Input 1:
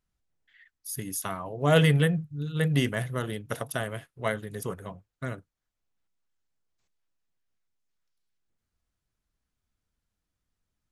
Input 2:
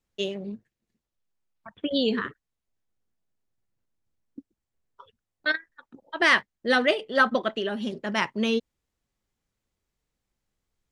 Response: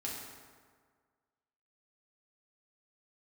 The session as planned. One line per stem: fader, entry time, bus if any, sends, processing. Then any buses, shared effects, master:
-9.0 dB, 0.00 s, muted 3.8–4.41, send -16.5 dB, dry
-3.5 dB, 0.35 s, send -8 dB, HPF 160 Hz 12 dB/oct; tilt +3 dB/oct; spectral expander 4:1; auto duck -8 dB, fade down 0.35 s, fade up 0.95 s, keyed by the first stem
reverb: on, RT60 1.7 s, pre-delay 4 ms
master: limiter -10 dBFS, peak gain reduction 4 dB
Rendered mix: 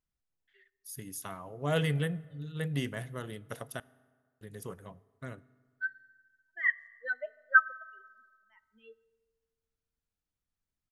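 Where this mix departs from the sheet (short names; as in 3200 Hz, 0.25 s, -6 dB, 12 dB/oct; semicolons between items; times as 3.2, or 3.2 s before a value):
stem 1: send -16.5 dB -> -10.5 dB; reverb return -9.5 dB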